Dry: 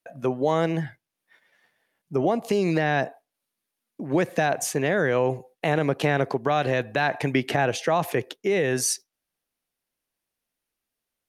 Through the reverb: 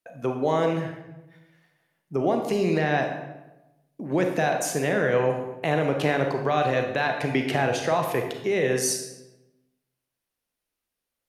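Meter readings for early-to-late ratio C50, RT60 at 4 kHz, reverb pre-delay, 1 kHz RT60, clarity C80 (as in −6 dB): 5.5 dB, 0.70 s, 31 ms, 0.95 s, 8.0 dB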